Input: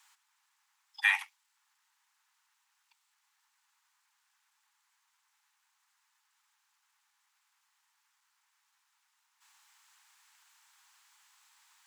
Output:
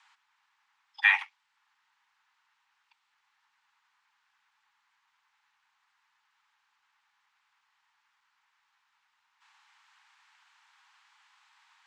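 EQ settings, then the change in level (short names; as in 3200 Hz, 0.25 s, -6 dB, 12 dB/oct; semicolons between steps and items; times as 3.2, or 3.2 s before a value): LPF 3300 Hz 12 dB/oct; +5.0 dB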